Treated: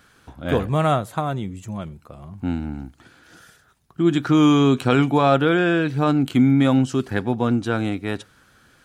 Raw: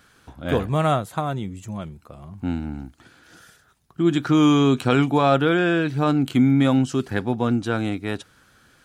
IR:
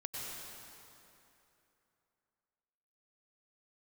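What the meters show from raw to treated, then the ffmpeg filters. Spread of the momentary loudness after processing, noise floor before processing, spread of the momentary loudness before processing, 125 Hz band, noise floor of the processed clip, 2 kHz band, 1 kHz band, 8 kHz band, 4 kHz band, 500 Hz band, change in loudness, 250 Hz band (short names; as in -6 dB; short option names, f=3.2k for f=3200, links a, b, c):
16 LU, -58 dBFS, 16 LU, +1.0 dB, -57 dBFS, +1.0 dB, +1.0 dB, n/a, +0.5 dB, +1.0 dB, +1.0 dB, +1.0 dB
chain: -filter_complex "[0:a]asplit=2[a][b];[1:a]atrim=start_sample=2205,atrim=end_sample=4410,lowpass=3.9k[c];[b][c]afir=irnorm=-1:irlink=0,volume=-12.5dB[d];[a][d]amix=inputs=2:normalize=0"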